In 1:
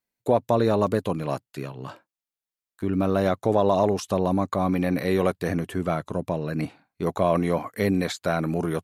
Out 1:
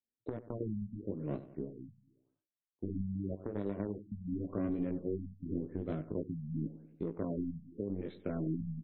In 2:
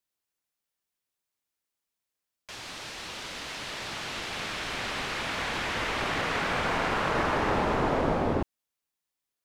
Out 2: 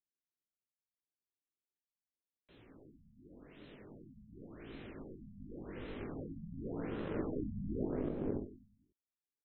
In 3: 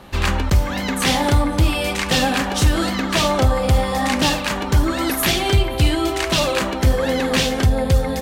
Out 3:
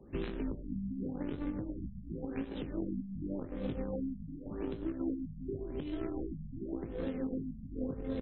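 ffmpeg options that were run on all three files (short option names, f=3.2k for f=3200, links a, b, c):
-filter_complex "[0:a]equalizer=f=270:w=1.5:g=2.5,acrossover=split=150[a][b];[a]asoftclip=type=tanh:threshold=-24.5dB[c];[c][b]amix=inputs=2:normalize=0,aeval=exprs='0.668*(cos(1*acos(clip(val(0)/0.668,-1,1)))-cos(1*PI/2))+0.0237*(cos(2*acos(clip(val(0)/0.668,-1,1)))-cos(2*PI/2))+0.211*(cos(3*acos(clip(val(0)/0.668,-1,1)))-cos(3*PI/2))':c=same,lowshelf=f=580:t=q:w=1.5:g=12,flanger=delay=18:depth=2.1:speed=0.44,acompressor=threshold=-34dB:ratio=12,alimiter=level_in=6dB:limit=-24dB:level=0:latency=1:release=270,volume=-6dB,aecho=1:1:95|190|285|380|475:0.178|0.0978|0.0538|0.0296|0.0163,afftfilt=real='re*lt(b*sr/1024,230*pow(4200/230,0.5+0.5*sin(2*PI*0.89*pts/sr)))':imag='im*lt(b*sr/1024,230*pow(4200/230,0.5+0.5*sin(2*PI*0.89*pts/sr)))':win_size=1024:overlap=0.75,volume=5dB"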